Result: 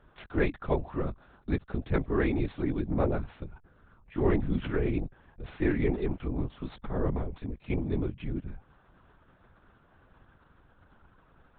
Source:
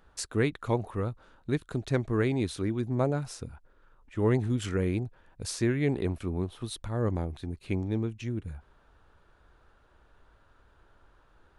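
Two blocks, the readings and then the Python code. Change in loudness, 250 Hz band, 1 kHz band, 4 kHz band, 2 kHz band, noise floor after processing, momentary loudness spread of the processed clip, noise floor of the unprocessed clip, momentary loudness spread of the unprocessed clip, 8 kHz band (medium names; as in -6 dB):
-0.5 dB, -0.5 dB, -0.5 dB, -9.0 dB, 0.0 dB, -63 dBFS, 14 LU, -63 dBFS, 13 LU, under -35 dB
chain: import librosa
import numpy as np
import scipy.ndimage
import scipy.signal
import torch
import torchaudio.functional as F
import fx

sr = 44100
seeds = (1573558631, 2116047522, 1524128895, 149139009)

y = scipy.ndimage.median_filter(x, 9, mode='constant')
y = fx.lpc_vocoder(y, sr, seeds[0], excitation='whisper', order=10)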